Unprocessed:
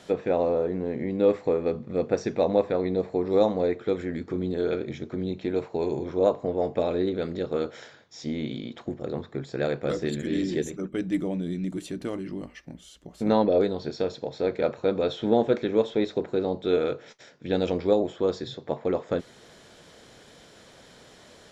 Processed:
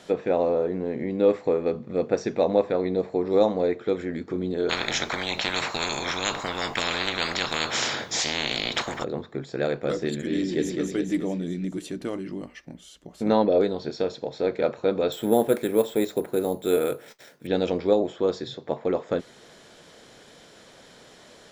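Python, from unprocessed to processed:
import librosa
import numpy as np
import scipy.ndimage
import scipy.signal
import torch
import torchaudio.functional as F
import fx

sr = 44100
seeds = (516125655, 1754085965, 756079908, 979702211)

y = fx.spectral_comp(x, sr, ratio=10.0, at=(4.69, 9.04))
y = fx.echo_throw(y, sr, start_s=10.37, length_s=0.42, ms=210, feedback_pct=55, wet_db=-3.0)
y = fx.resample_bad(y, sr, factor=4, down='none', up='hold', at=(15.12, 17.47))
y = fx.peak_eq(y, sr, hz=65.0, db=-6.5, octaves=1.9)
y = F.gain(torch.from_numpy(y), 1.5).numpy()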